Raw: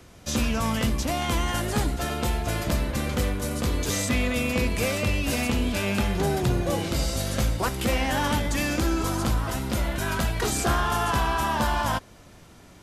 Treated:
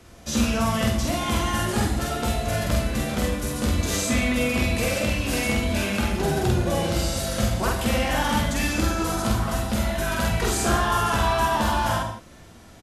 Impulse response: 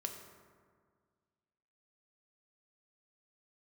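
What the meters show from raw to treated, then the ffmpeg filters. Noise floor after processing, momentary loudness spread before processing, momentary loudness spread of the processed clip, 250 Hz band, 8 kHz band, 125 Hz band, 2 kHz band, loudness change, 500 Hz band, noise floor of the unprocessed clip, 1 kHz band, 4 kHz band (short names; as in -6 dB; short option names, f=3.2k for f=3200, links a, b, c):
-47 dBFS, 3 LU, 4 LU, +2.5 dB, +2.5 dB, +1.5 dB, +2.0 dB, +2.0 dB, +2.5 dB, -50 dBFS, +2.5 dB, +2.0 dB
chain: -filter_complex "[0:a]asplit=2[a][b];[b]adelay=47,volume=-2dB[c];[a][c]amix=inputs=2:normalize=0[d];[1:a]atrim=start_sample=2205,atrim=end_sample=4410,asetrate=24696,aresample=44100[e];[d][e]afir=irnorm=-1:irlink=0,volume=-1.5dB"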